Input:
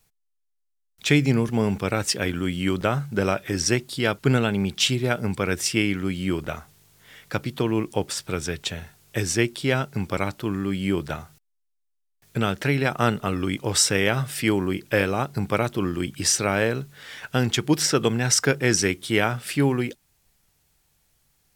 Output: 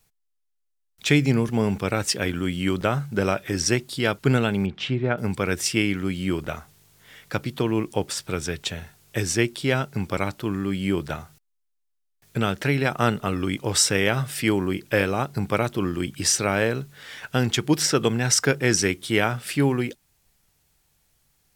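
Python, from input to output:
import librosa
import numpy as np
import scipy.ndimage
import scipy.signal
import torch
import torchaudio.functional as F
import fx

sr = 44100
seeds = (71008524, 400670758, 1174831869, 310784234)

y = fx.lowpass(x, sr, hz=2000.0, slope=12, at=(4.66, 5.18))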